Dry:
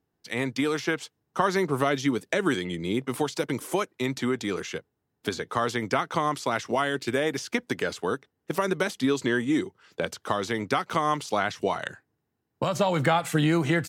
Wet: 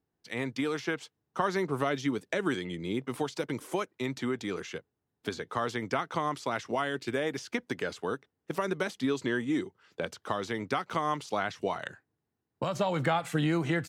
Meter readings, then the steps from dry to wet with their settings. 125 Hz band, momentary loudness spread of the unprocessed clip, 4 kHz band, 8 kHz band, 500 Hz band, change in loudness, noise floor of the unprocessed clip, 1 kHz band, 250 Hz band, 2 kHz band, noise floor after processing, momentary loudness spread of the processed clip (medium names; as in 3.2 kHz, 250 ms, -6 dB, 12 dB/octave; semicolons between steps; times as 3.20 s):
-5.0 dB, 9 LU, -6.0 dB, -8.0 dB, -5.0 dB, -5.0 dB, -79 dBFS, -5.0 dB, -5.0 dB, -5.5 dB, -84 dBFS, 9 LU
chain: treble shelf 7.2 kHz -6.5 dB; trim -5 dB